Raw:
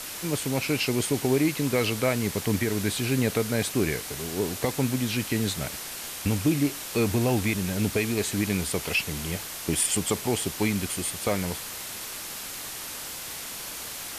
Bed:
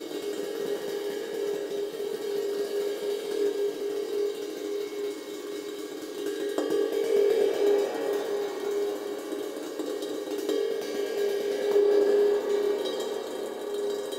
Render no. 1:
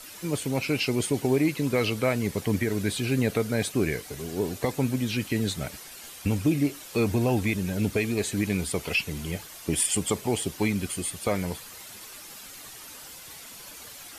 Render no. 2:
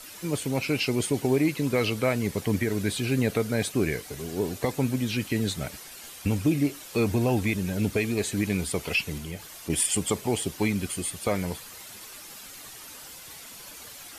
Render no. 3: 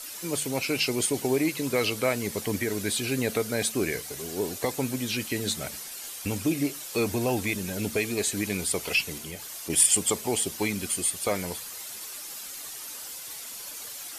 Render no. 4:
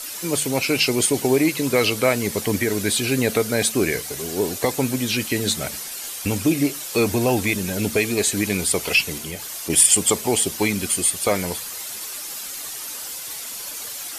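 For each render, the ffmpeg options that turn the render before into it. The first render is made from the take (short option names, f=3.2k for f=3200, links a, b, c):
-af "afftdn=nr=10:nf=-37"
-filter_complex "[0:a]asettb=1/sr,asplit=3[a][b][c];[a]atrim=end=9.184[d];[b]atrim=start=9.18:end=9.7,asetpts=PTS-STARTPTS,afade=t=in:d=0.004:c=qsin,afade=t=out:st=0.516:d=0.004:c=qsin,acompressor=threshold=-38dB:ratio=1.5:attack=3.2:release=140:knee=1:detection=peak[e];[c]atrim=start=9.696[f];[d][e]acrossfade=d=0.004:c1=hsin:c2=qsin[g];[g][f]acrossfade=d=0.004:c1=qsin:c2=hsin"
-af "bass=f=250:g=-7,treble=f=4k:g=6,bandreject=f=74.06:t=h:w=4,bandreject=f=148.12:t=h:w=4,bandreject=f=222.18:t=h:w=4"
-af "volume=7dB,alimiter=limit=-3dB:level=0:latency=1"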